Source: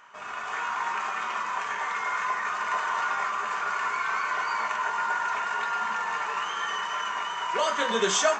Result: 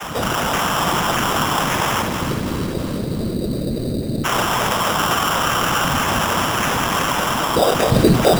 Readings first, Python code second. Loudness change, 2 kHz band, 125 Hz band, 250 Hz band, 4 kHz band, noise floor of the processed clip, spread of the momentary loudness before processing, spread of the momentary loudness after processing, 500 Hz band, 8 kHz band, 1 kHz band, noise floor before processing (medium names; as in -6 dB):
+9.5 dB, +5.5 dB, no reading, +23.5 dB, +12.0 dB, -24 dBFS, 4 LU, 7 LU, +12.5 dB, +10.0 dB, +7.0 dB, -35 dBFS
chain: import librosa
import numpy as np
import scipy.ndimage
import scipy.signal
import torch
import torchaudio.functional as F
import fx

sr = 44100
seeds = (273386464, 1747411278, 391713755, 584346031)

p1 = fx.spec_erase(x, sr, start_s=2.01, length_s=2.23, low_hz=540.0, high_hz=4900.0)
p2 = fx.graphic_eq_15(p1, sr, hz=(160, 630, 1600), db=(11, 8, 6))
p3 = fx.rider(p2, sr, range_db=10, speed_s=0.5)
p4 = p2 + (p3 * 10.0 ** (-2.0 / 20.0))
p5 = fx.vocoder(p4, sr, bands=16, carrier='saw', carrier_hz=170.0)
p6 = fx.small_body(p5, sr, hz=(200.0, 310.0), ring_ms=80, db=16)
p7 = fx.whisperise(p6, sr, seeds[0])
p8 = fx.sample_hold(p7, sr, seeds[1], rate_hz=4300.0, jitter_pct=0)
p9 = p8 + fx.echo_split(p8, sr, split_hz=900.0, low_ms=233, high_ms=322, feedback_pct=52, wet_db=-9.5, dry=0)
p10 = fx.env_flatten(p9, sr, amount_pct=50)
y = p10 * 10.0 ** (-7.0 / 20.0)